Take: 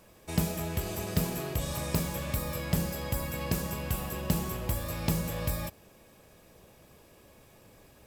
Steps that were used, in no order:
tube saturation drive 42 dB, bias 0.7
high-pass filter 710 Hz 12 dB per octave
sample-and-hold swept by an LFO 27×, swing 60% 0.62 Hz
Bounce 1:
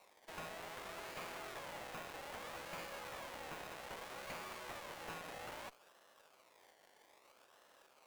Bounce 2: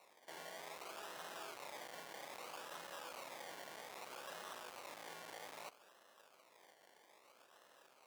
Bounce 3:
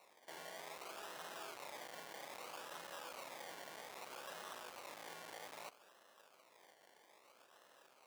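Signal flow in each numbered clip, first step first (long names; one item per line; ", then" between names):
sample-and-hold swept by an LFO, then high-pass filter, then tube saturation
sample-and-hold swept by an LFO, then tube saturation, then high-pass filter
tube saturation, then sample-and-hold swept by an LFO, then high-pass filter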